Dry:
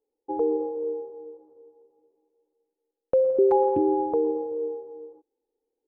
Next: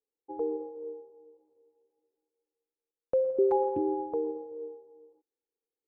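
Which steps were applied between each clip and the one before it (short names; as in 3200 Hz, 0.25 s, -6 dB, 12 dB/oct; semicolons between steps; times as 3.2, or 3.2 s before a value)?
upward expander 1.5:1, over -36 dBFS; gain -4.5 dB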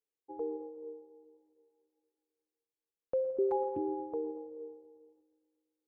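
multi-head echo 0.119 s, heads first and second, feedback 57%, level -23.5 dB; gain -5.5 dB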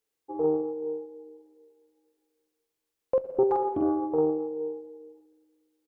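doubler 45 ms -3 dB; Doppler distortion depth 0.23 ms; gain +8.5 dB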